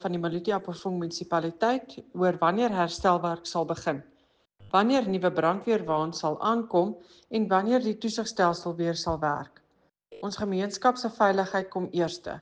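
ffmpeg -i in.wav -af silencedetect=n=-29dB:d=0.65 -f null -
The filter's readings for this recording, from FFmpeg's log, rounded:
silence_start: 3.97
silence_end: 4.74 | silence_duration: 0.77
silence_start: 9.41
silence_end: 10.23 | silence_duration: 0.82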